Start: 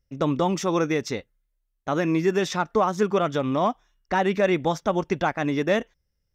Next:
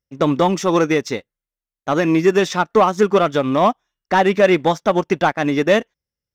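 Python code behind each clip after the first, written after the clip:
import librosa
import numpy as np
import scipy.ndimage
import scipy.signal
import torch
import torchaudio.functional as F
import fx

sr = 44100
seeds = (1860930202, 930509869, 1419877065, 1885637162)

y = fx.highpass(x, sr, hz=150.0, slope=6)
y = fx.leveller(y, sr, passes=1)
y = fx.upward_expand(y, sr, threshold_db=-37.0, expansion=1.5)
y = F.gain(torch.from_numpy(y), 7.0).numpy()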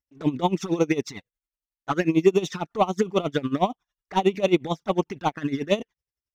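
y = fx.peak_eq(x, sr, hz=560.0, db=-5.5, octaves=0.24)
y = fx.env_flanger(y, sr, rest_ms=3.5, full_db=-12.5)
y = y * 10.0 ** (-18 * (0.5 - 0.5 * np.cos(2.0 * np.pi * 11.0 * np.arange(len(y)) / sr)) / 20.0)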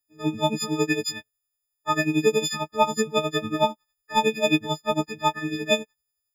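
y = fx.freq_snap(x, sr, grid_st=6)
y = F.gain(torch.from_numpy(y), -2.0).numpy()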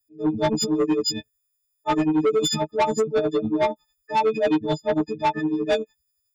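y = fx.envelope_sharpen(x, sr, power=2.0)
y = 10.0 ** (-22.0 / 20.0) * np.tanh(y / 10.0 ** (-22.0 / 20.0))
y = F.gain(torch.from_numpy(y), 6.5).numpy()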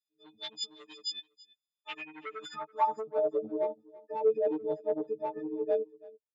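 y = fx.filter_sweep_bandpass(x, sr, from_hz=3700.0, to_hz=490.0, start_s=1.67, end_s=3.44, q=5.0)
y = y + 10.0 ** (-21.5 / 20.0) * np.pad(y, (int(331 * sr / 1000.0), 0))[:len(y)]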